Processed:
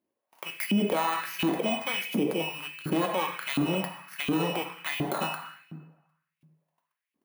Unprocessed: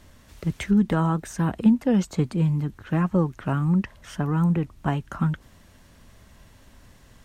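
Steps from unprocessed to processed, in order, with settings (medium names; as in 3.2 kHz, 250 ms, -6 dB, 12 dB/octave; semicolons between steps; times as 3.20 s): bit-reversed sample order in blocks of 16 samples; resonant high shelf 3.3 kHz -7.5 dB, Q 1.5; gate -45 dBFS, range -31 dB; waveshaping leveller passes 1; in parallel at +2 dB: compression, threshold -30 dBFS, peak gain reduction 16.5 dB; on the sum: hum notches 50/100/150 Hz; reverberation RT60 1.2 s, pre-delay 5 ms, DRR 3.5 dB; LFO high-pass saw up 1.4 Hz 260–2700 Hz; peaking EQ 1.5 kHz -5.5 dB 0.75 oct; peak limiter -15 dBFS, peak gain reduction 10.5 dB; trim -2.5 dB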